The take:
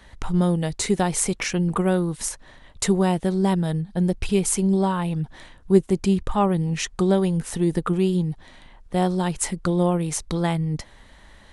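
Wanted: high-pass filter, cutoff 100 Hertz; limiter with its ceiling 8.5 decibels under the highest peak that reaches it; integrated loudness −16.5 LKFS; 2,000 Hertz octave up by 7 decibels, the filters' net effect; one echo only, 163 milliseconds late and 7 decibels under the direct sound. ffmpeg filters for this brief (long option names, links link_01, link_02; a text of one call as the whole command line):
ffmpeg -i in.wav -af "highpass=100,equalizer=frequency=2000:width_type=o:gain=8.5,alimiter=limit=-13.5dB:level=0:latency=1,aecho=1:1:163:0.447,volume=7dB" out.wav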